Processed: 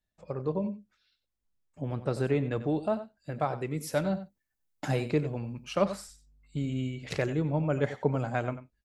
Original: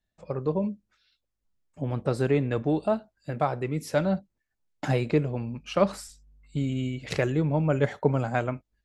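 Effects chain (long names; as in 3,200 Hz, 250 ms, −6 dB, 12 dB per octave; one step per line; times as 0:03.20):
0:03.60–0:05.79: high-shelf EQ 8,100 Hz +11 dB
single-tap delay 92 ms −13.5 dB
level −4 dB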